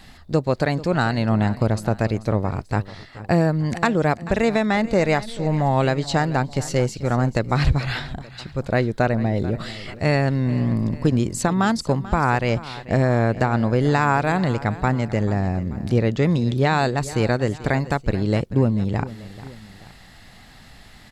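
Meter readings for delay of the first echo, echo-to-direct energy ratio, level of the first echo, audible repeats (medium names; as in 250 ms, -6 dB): 438 ms, -15.5 dB, -16.5 dB, 2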